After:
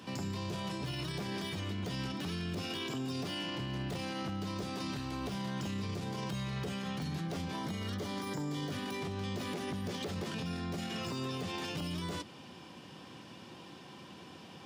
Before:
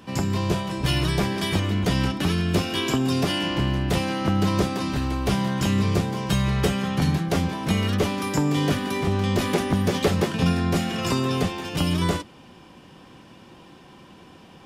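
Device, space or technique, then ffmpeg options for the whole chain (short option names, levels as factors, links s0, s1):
broadcast voice chain: -filter_complex "[0:a]asettb=1/sr,asplit=3[s0][s1][s2];[s0]atrim=end=7.574[s3];[s1]atrim=start=7.57:end=8.72,asetpts=PTS-STARTPTS,afade=t=in:d=0.004:c=qsin,afade=t=out:st=1.146:d=0.004:c=qsin,bandreject=f=2600:w=5.9[s4];[s2]atrim=start=8.716[s5];[s3][s4]acrossfade=d=0.004:c1=hsin:c2=qsin[s6];[s6][s5]acrossfade=d=0.004:c1=qsin:c2=hsin,highpass=f=85:w=0.5412,highpass=f=85:w=1.3066,deesser=0.75,acompressor=threshold=0.0501:ratio=3,equalizer=f=4600:t=o:w=1.4:g=5,alimiter=level_in=1.33:limit=0.0631:level=0:latency=1:release=41,volume=0.75,volume=0.668"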